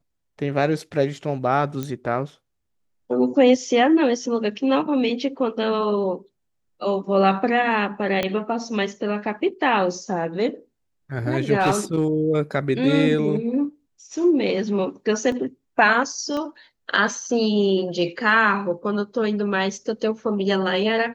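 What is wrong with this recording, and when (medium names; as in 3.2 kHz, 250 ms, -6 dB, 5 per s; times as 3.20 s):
1.83 s: pop -15 dBFS
8.23 s: pop -9 dBFS
11.59–12.04 s: clipped -13.5 dBFS
15.32 s: dropout 2.5 ms
16.37 s: pop -18 dBFS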